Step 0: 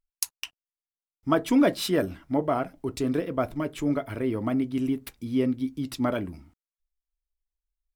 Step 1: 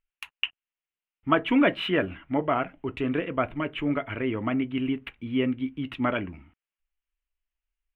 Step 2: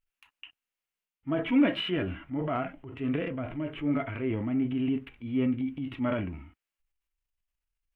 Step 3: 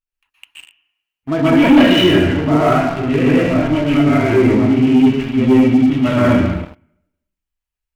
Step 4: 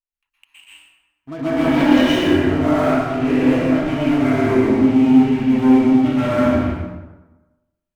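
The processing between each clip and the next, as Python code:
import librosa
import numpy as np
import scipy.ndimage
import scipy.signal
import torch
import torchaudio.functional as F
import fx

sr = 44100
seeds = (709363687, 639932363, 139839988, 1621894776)

y1 = fx.curve_eq(x, sr, hz=(620.0, 2900.0, 4900.0), db=(0, 11, -25))
y1 = y1 * 10.0 ** (-1.0 / 20.0)
y2 = fx.hpss(y1, sr, part='percussive', gain_db=-17)
y2 = fx.transient(y2, sr, attack_db=-3, sustain_db=7)
y3 = fx.rev_plate(y2, sr, seeds[0], rt60_s=0.93, hf_ratio=0.9, predelay_ms=110, drr_db=-8.0)
y3 = fx.leveller(y3, sr, passes=3)
y3 = y3 * 10.0 ** (-1.0 / 20.0)
y4 = 10.0 ** (-9.5 / 20.0) * np.tanh(y3 / 10.0 ** (-9.5 / 20.0))
y4 = fx.rev_plate(y4, sr, seeds[1], rt60_s=1.1, hf_ratio=0.6, predelay_ms=105, drr_db=-9.0)
y4 = y4 * 10.0 ** (-11.5 / 20.0)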